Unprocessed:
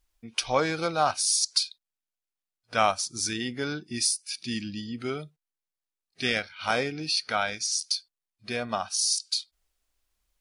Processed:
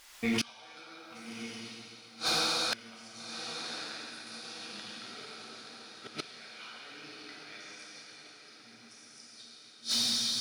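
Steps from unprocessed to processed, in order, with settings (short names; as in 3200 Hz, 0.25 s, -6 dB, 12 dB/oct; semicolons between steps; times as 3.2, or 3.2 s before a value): low shelf 440 Hz -6.5 dB; in parallel at -9 dB: short-mantissa float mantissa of 2-bit; on the sum: negative-ratio compressor -36 dBFS, ratio -1; spectral gain 8.39–9.32, 320–4700 Hz -26 dB; plate-style reverb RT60 4.7 s, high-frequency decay 0.8×, DRR -7 dB; flipped gate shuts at -26 dBFS, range -36 dB; on a send: diffused feedback echo 1.189 s, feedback 58%, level -12 dB; on the sum: overdrive pedal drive 25 dB, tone 5400 Hz, clips at -14.5 dBFS; gain -2.5 dB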